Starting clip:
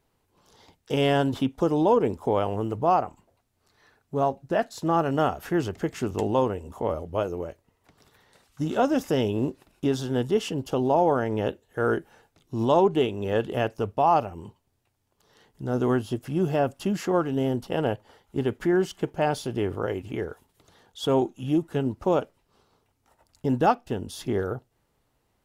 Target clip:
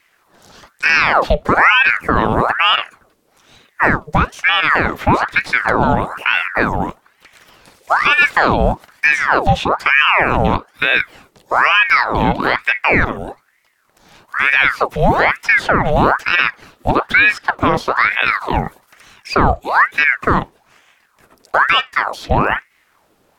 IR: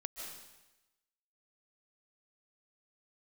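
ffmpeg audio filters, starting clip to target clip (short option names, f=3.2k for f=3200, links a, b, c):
-filter_complex "[0:a]acrossover=split=160|880|3900[a][b][c][d];[d]acompressor=threshold=-60dB:ratio=4[e];[a][b][c][e]amix=inputs=4:normalize=0,asetrate=48000,aresample=44100,alimiter=level_in=16.5dB:limit=-1dB:release=50:level=0:latency=1,aeval=exprs='val(0)*sin(2*PI*1200*n/s+1200*0.75/1.1*sin(2*PI*1.1*n/s))':c=same"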